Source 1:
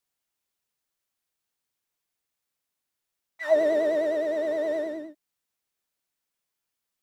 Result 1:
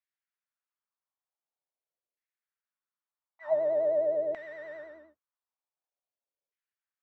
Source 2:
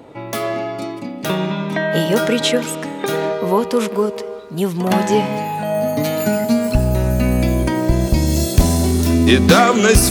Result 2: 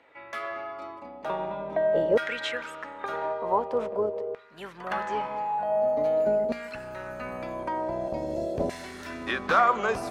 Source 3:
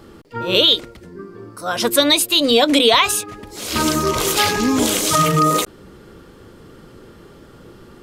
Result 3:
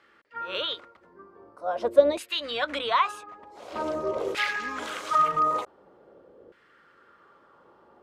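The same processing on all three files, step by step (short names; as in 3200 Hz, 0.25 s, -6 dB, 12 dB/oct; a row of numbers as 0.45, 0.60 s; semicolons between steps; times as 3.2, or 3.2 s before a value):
octaver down 2 oct, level -3 dB; bell 560 Hz +4.5 dB 0.21 oct; LFO band-pass saw down 0.46 Hz 500–2000 Hz; gain -3 dB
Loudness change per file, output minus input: -3.5, -11.5, -11.0 LU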